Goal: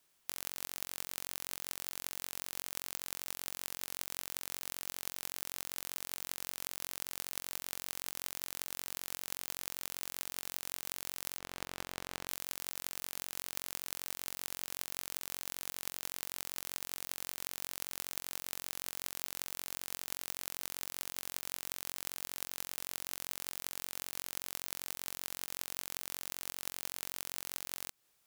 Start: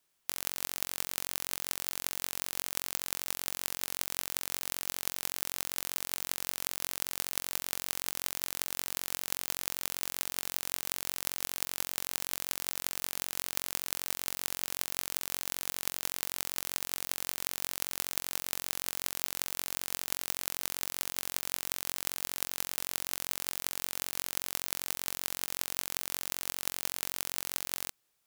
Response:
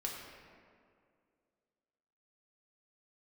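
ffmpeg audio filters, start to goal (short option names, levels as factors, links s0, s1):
-filter_complex "[0:a]asplit=3[s0][s1][s2];[s0]afade=t=out:st=11.38:d=0.02[s3];[s1]lowpass=f=1700:p=1,afade=t=in:st=11.38:d=0.02,afade=t=out:st=12.27:d=0.02[s4];[s2]afade=t=in:st=12.27:d=0.02[s5];[s3][s4][s5]amix=inputs=3:normalize=0,acompressor=threshold=0.0141:ratio=4,volume=1.41"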